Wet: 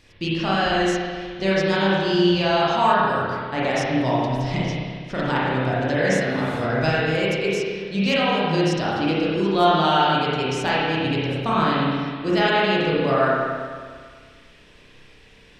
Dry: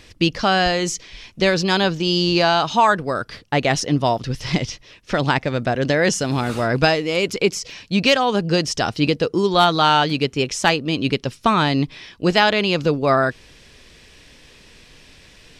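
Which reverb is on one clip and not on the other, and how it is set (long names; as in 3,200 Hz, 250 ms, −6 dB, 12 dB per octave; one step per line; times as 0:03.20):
spring reverb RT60 1.8 s, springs 31/51 ms, chirp 60 ms, DRR −8 dB
level −10.5 dB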